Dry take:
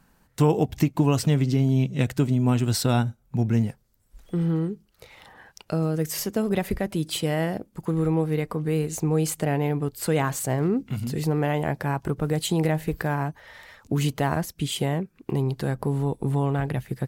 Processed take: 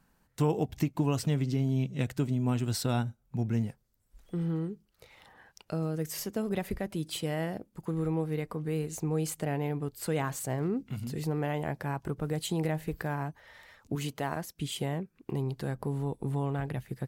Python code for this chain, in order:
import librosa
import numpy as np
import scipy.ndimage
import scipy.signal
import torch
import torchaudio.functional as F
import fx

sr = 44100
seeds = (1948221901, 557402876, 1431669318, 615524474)

y = fx.low_shelf(x, sr, hz=150.0, db=-9.5, at=(13.95, 14.59))
y = y * librosa.db_to_amplitude(-7.5)